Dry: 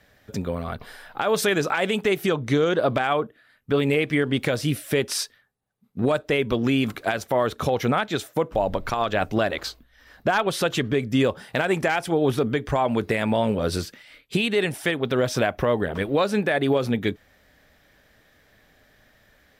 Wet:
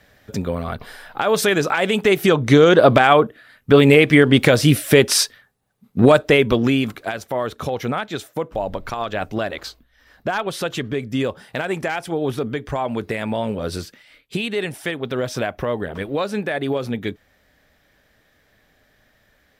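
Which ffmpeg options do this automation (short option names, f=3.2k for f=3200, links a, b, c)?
-af "volume=10dB,afade=t=in:st=1.85:d=0.91:silence=0.501187,afade=t=out:st=6.14:d=0.83:silence=0.266073"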